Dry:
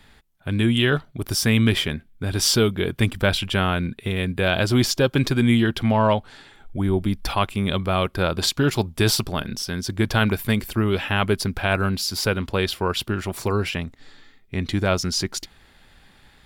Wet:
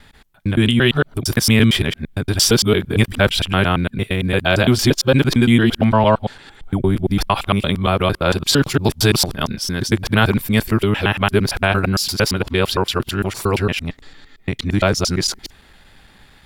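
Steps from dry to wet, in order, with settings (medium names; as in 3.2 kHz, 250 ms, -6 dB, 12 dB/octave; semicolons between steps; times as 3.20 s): time reversed locally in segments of 114 ms; trim +5 dB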